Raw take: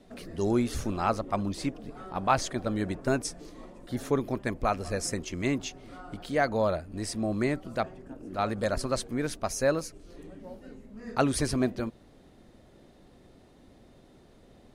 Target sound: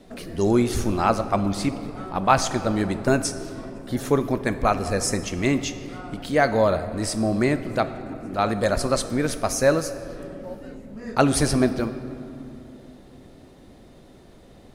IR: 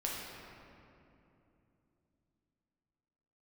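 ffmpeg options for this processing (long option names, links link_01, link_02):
-filter_complex "[0:a]asplit=2[link_01][link_02];[1:a]atrim=start_sample=2205,highshelf=frequency=7700:gain=11[link_03];[link_02][link_03]afir=irnorm=-1:irlink=0,volume=-11.5dB[link_04];[link_01][link_04]amix=inputs=2:normalize=0,volume=5dB"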